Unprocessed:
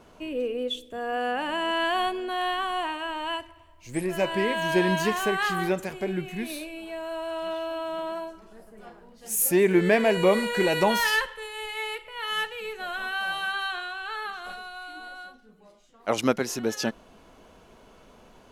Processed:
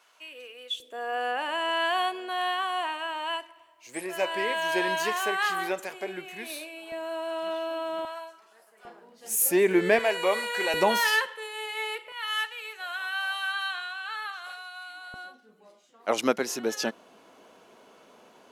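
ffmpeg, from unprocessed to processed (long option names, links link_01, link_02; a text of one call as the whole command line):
ffmpeg -i in.wav -af "asetnsamples=nb_out_samples=441:pad=0,asendcmd='0.8 highpass f 510;6.92 highpass f 250;8.05 highpass f 920;8.85 highpass f 290;9.99 highpass f 640;10.74 highpass f 270;12.12 highpass f 970;15.14 highpass f 270',highpass=1400" out.wav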